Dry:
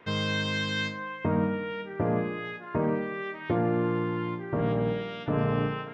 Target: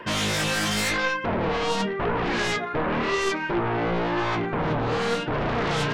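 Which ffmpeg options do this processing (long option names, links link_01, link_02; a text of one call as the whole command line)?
ffmpeg -i in.wav -af "afftfilt=real='re*pow(10,10/40*sin(2*PI*(1.3*log(max(b,1)*sr/1024/100)/log(2)-(1.7)*(pts-256)/sr)))':imag='im*pow(10,10/40*sin(2*PI*(1.3*log(max(b,1)*sr/1024/100)/log(2)-(1.7)*(pts-256)/sr)))':win_size=1024:overlap=0.75,areverse,acompressor=threshold=-34dB:ratio=8,areverse,aeval=exprs='0.0501*sin(PI/2*3.55*val(0)/0.0501)':channel_layout=same,flanger=delay=1.8:depth=5.8:regen=60:speed=0.93:shape=triangular,volume=8.5dB" out.wav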